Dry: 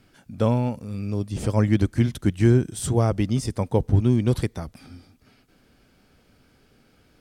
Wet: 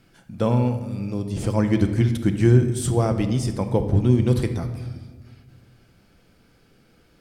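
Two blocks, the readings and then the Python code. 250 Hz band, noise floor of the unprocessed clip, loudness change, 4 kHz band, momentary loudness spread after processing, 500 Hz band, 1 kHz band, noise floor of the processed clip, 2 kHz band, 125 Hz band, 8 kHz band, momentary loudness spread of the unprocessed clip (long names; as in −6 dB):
+1.5 dB, −60 dBFS, +1.5 dB, +1.0 dB, 11 LU, +1.5 dB, +1.0 dB, −58 dBFS, +1.0 dB, +1.5 dB, +0.5 dB, 10 LU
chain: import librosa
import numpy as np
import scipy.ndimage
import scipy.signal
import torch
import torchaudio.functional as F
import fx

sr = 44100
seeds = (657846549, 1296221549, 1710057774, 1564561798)

y = fx.room_shoebox(x, sr, seeds[0], volume_m3=1100.0, walls='mixed', distance_m=0.77)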